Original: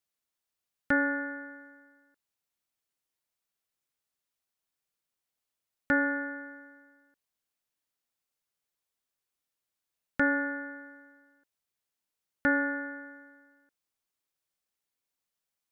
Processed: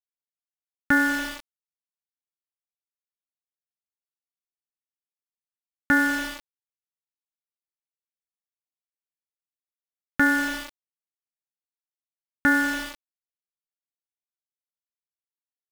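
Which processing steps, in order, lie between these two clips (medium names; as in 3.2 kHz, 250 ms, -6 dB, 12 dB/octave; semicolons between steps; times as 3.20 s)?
peaking EQ 530 Hz -13.5 dB 0.34 oct; small samples zeroed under -35 dBFS; trim +7 dB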